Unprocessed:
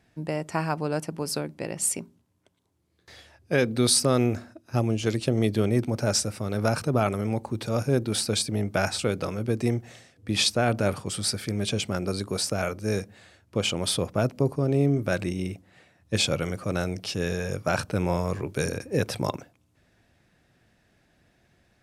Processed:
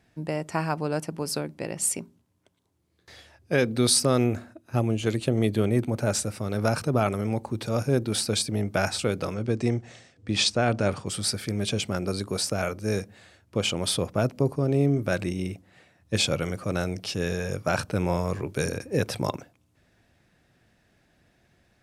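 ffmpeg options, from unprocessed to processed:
-filter_complex "[0:a]asettb=1/sr,asplit=3[a][b][c];[a]atrim=end=4.244[d];[b]atrim=start=4.24:end=6.27,asetpts=PTS-STARTPTS,afade=t=in:d=0.004:c=qsin,afade=t=out:st=2.026:d=0.004:c=qsin,equalizer=f=5.3k:w=4.1:g=-9.5[e];[c]atrim=start=6.266[f];[d][e]acrossfade=d=0.004:c1=hsin:c2=qsin[g];[g][f]acrossfade=d=0.004:c1=qsin:c2=hsin,asettb=1/sr,asplit=3[h][i][j];[h]atrim=end=9.344[k];[i]atrim=start=9.34:end=11.07,asetpts=PTS-STARTPTS,afade=t=in:d=0.004:c=qsin,afade=t=out:st=1.726:d=0.004:c=qsin,lowpass=f=8.4k:w=0.5412,lowpass=f=8.4k:w=1.3066[l];[j]atrim=start=11.066[m];[k][l]acrossfade=d=0.004:c1=hsin:c2=qsin[n];[n][m]acrossfade=d=0.004:c1=qsin:c2=hsin"

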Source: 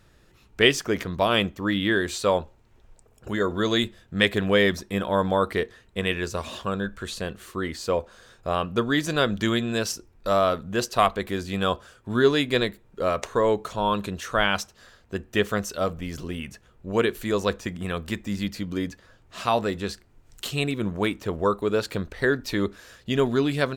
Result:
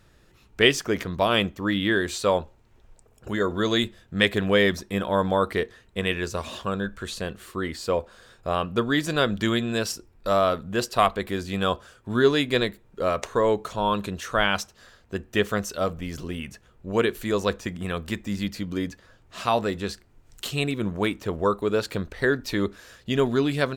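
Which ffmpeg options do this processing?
-filter_complex "[0:a]asettb=1/sr,asplit=3[a][b][c];[a]atrim=end=7.414[d];[b]atrim=start=7.41:end=11.41,asetpts=PTS-STARTPTS,afade=t=in:d=0.004:c=qsin,afade=t=out:st=3.996:d=0.004:c=qsin,bandreject=f=6.2k:w=12[e];[c]atrim=start=11.406[f];[d][e]acrossfade=d=0.004:c1=hsin:c2=qsin[g];[g][f]acrossfade=d=0.004:c1=qsin:c2=hsin"

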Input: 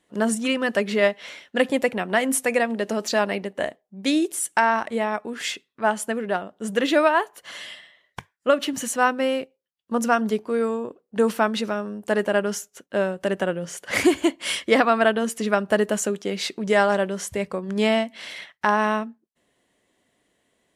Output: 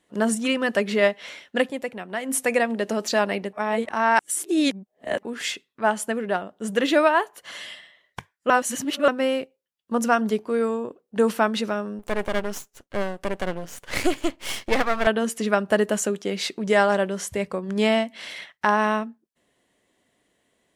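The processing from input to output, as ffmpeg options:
-filter_complex "[0:a]asettb=1/sr,asplit=3[a][b][c];[a]atrim=end=11.994[d];[b]atrim=start=11.99:end=15.07,asetpts=PTS-STARTPTS,afade=t=in:d=0.004:c=qsin,afade=t=out:st=3.076:d=0.004:c=qsin,aeval=exprs='max(val(0),0)':c=same[e];[c]atrim=start=15.066[f];[d][e]acrossfade=d=0.004:c1=hsin:c2=qsin[g];[g][f]acrossfade=d=0.004:c1=qsin:c2=hsin,asplit=7[h][i][j][k][l][m][n];[h]atrim=end=1.71,asetpts=PTS-STARTPTS,afade=t=out:st=1.57:d=0.14:silence=0.375837[o];[i]atrim=start=1.71:end=2.25,asetpts=PTS-STARTPTS,volume=-8.5dB[p];[j]atrim=start=2.25:end=3.532,asetpts=PTS-STARTPTS,afade=t=in:d=0.14:silence=0.375837[q];[k]atrim=start=3.528:end=5.232,asetpts=PTS-STARTPTS,areverse[r];[l]atrim=start=5.228:end=8.502[s];[m]atrim=start=8.498:end=9.082,asetpts=PTS-STARTPTS,areverse[t];[n]atrim=start=9.078[u];[o][p][q]concat=n=3:v=0:a=1[v];[v][r]acrossfade=d=0.004:c1=hsin:c2=hsin[w];[w][s]acrossfade=d=0.004:c1=hsin:c2=hsin[x];[x][t]acrossfade=d=0.004:c1=hsin:c2=hsin[y];[y][u]acrossfade=d=0.004:c1=hsin:c2=hsin"

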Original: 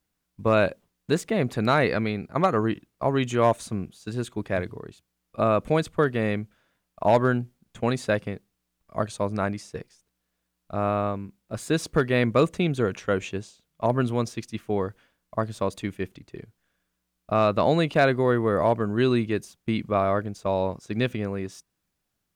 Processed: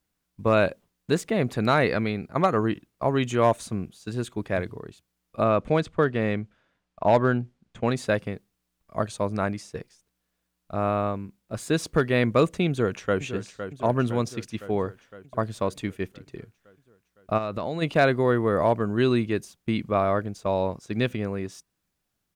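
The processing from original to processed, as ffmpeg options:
-filter_complex "[0:a]asettb=1/sr,asplit=3[a][b][c];[a]atrim=end=5.444[d];[b]atrim=start=5.44:end=7.96,asetpts=PTS-STARTPTS,afade=t=in:d=0.004:c=qsin,afade=t=out:st=2.516:d=0.004:c=qsin,adynamicsmooth=sensitivity=1.5:basefreq=6.2k[e];[c]atrim=start=7.956[f];[d][e]acrossfade=d=0.004:c1=hsin:c2=qsin[g];[g][f]acrossfade=d=0.004:c1=qsin:c2=hsin,asplit=2[h][i];[i]afade=t=in:st=12.69:d=0.01,afade=t=out:st=13.21:d=0.01,aecho=0:1:510|1020|1530|2040|2550|3060|3570|4080|4590:0.316228|0.205548|0.133606|0.0868441|0.0564486|0.0366916|0.0238495|0.0155022|0.0100764[j];[h][j]amix=inputs=2:normalize=0,asplit=3[k][l][m];[k]afade=t=out:st=17.37:d=0.02[n];[l]acompressor=threshold=-26dB:ratio=5:attack=3.2:release=140:knee=1:detection=peak,afade=t=in:st=17.37:d=0.02,afade=t=out:st=17.81:d=0.02[o];[m]afade=t=in:st=17.81:d=0.02[p];[n][o][p]amix=inputs=3:normalize=0"

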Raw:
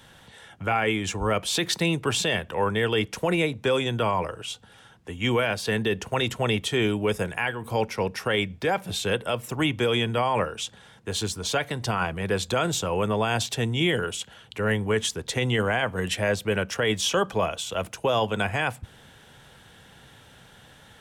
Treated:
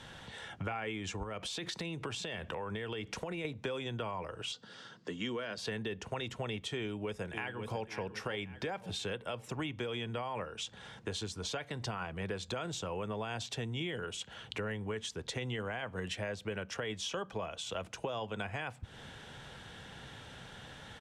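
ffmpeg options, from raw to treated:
-filter_complex "[0:a]asettb=1/sr,asplit=3[a][b][c];[a]atrim=end=1.234[d];[b]atrim=start=1.23:end=3.45,asetpts=PTS-STARTPTS,afade=t=in:d=0.004:c=qsin,afade=t=out:st=2.216:d=0.004:c=qsin,acompressor=threshold=-30dB:ratio=5:attack=3.2:release=140:knee=1:detection=peak[e];[c]atrim=start=3.446[f];[d][e]acrossfade=d=0.004:c1=hsin:c2=qsin[g];[g][f]acrossfade=d=0.004:c1=qsin:c2=hsin,asettb=1/sr,asplit=3[h][i][j];[h]atrim=end=4.524[k];[i]atrim=start=4.52:end=5.58,asetpts=PTS-STARTPTS,afade=t=in:d=0.004:c=qsin,afade=t=out:st=1.056:d=0.004:c=qsin,highpass=f=150:w=0.5412,highpass=f=150:w=1.3066,equalizer=f=800:t=q:w=4:g=-9,equalizer=f=2.4k:t=q:w=4:g=-7,equalizer=f=4.7k:t=q:w=4:g=9,lowpass=f=8.2k:w=0.5412,lowpass=f=8.2k:w=1.3066[l];[j]atrim=start=5.576[m];[k][l]acrossfade=d=0.004:c1=hsin:c2=qsin[n];[n][m]acrossfade=d=0.004:c1=qsin:c2=hsin,asplit=2[o][p];[p]afade=t=in:st=6.79:d=0.01,afade=t=out:st=7.82:d=0.01,aecho=0:1:540|1080|1620|2160:0.237137|0.0948549|0.037942|0.0151768[q];[o][q]amix=inputs=2:normalize=0,acompressor=threshold=-38dB:ratio=6,lowpass=7k,volume=1.5dB"

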